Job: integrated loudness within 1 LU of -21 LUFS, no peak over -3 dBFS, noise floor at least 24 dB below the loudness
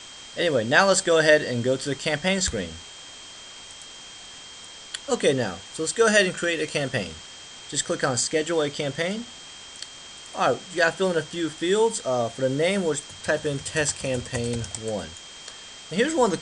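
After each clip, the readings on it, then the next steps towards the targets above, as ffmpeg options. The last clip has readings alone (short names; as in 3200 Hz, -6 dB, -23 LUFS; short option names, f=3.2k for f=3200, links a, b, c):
steady tone 3200 Hz; tone level -44 dBFS; noise floor -43 dBFS; noise floor target -48 dBFS; loudness -24.0 LUFS; peak -3.0 dBFS; loudness target -21.0 LUFS
-> -af "bandreject=f=3.2k:w=30"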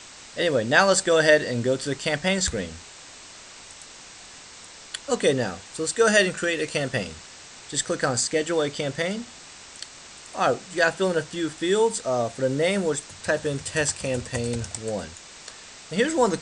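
steady tone none; noise floor -45 dBFS; noise floor target -48 dBFS
-> -af "afftdn=nr=6:nf=-45"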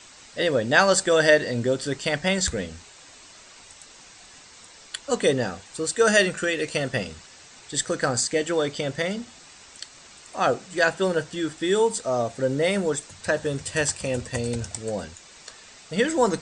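noise floor -49 dBFS; loudness -24.0 LUFS; peak -3.0 dBFS; loudness target -21.0 LUFS
-> -af "volume=3dB,alimiter=limit=-3dB:level=0:latency=1"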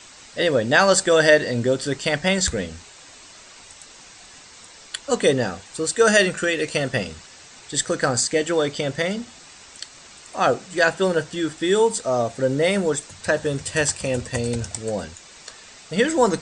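loudness -21.0 LUFS; peak -3.0 dBFS; noise floor -46 dBFS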